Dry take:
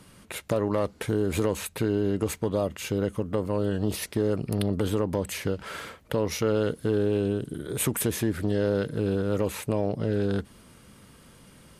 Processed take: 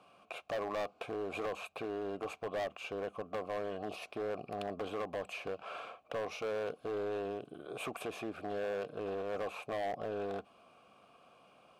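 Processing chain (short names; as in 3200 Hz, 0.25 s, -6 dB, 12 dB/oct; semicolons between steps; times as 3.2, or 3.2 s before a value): vowel filter a; hard clip -39.5 dBFS, distortion -8 dB; gain +7 dB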